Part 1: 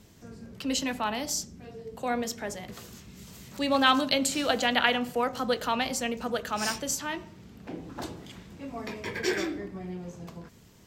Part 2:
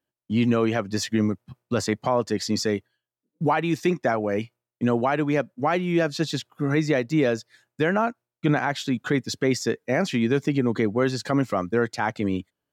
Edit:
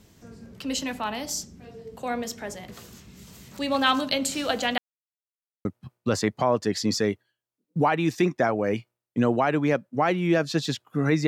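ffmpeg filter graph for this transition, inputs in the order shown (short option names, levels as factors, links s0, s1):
-filter_complex "[0:a]apad=whole_dur=11.27,atrim=end=11.27,asplit=2[s0][s1];[s0]atrim=end=4.78,asetpts=PTS-STARTPTS,afade=t=out:st=4.776:d=0.004:c=hsin[s2];[s1]atrim=start=4.78:end=5.65,asetpts=PTS-STARTPTS,volume=0[s3];[1:a]atrim=start=1.3:end=6.92,asetpts=PTS-STARTPTS,afade=t=in:d=0.004:c=hsin[s4];[s2][s3][s4]concat=n=3:v=0:a=1"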